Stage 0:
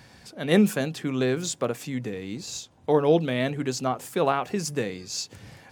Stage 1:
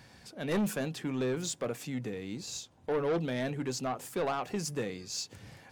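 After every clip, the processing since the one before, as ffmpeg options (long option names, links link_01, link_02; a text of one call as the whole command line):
ffmpeg -i in.wav -af "asoftclip=type=tanh:threshold=-21dB,volume=-4.5dB" out.wav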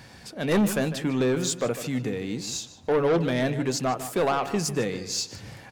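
ffmpeg -i in.wav -filter_complex "[0:a]asplit=2[link_01][link_02];[link_02]adelay=151,lowpass=frequency=3500:poles=1,volume=-12dB,asplit=2[link_03][link_04];[link_04]adelay=151,lowpass=frequency=3500:poles=1,volume=0.3,asplit=2[link_05][link_06];[link_06]adelay=151,lowpass=frequency=3500:poles=1,volume=0.3[link_07];[link_01][link_03][link_05][link_07]amix=inputs=4:normalize=0,volume=8dB" out.wav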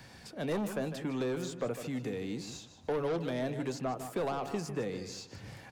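ffmpeg -i in.wav -filter_complex "[0:a]acrossover=split=250|550|1200|3000[link_01][link_02][link_03][link_04][link_05];[link_01]acompressor=threshold=-35dB:ratio=4[link_06];[link_02]acompressor=threshold=-32dB:ratio=4[link_07];[link_03]acompressor=threshold=-32dB:ratio=4[link_08];[link_04]acompressor=threshold=-47dB:ratio=4[link_09];[link_05]acompressor=threshold=-45dB:ratio=4[link_10];[link_06][link_07][link_08][link_09][link_10]amix=inputs=5:normalize=0,volume=-5dB" out.wav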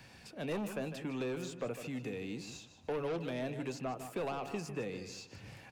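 ffmpeg -i in.wav -af "equalizer=frequency=2600:width_type=o:width=0.25:gain=8.5,volume=-4dB" out.wav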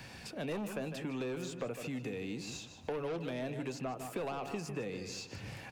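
ffmpeg -i in.wav -af "acompressor=threshold=-47dB:ratio=2,volume=6.5dB" out.wav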